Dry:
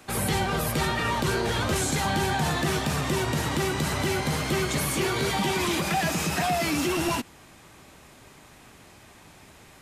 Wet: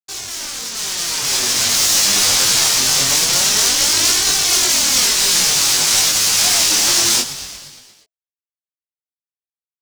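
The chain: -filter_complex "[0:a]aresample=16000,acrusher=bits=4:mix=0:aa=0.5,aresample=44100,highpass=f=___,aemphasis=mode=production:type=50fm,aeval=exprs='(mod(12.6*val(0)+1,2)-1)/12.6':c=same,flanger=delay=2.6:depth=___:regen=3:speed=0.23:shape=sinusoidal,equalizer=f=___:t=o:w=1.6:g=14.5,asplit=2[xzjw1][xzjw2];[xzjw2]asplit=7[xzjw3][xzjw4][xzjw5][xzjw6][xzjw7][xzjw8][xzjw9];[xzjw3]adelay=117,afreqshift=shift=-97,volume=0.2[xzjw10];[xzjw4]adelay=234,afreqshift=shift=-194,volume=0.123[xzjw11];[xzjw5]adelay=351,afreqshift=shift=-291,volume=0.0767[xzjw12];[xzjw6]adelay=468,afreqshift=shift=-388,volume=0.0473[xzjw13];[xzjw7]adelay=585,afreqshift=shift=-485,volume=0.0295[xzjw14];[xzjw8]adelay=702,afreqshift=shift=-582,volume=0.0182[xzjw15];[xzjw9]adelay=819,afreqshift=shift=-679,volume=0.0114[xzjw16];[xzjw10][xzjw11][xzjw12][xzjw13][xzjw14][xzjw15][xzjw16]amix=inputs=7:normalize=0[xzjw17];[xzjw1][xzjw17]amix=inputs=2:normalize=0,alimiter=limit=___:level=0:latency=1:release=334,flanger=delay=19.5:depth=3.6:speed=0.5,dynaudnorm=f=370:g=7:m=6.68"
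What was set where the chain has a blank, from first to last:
86, 7.1, 5600, 0.224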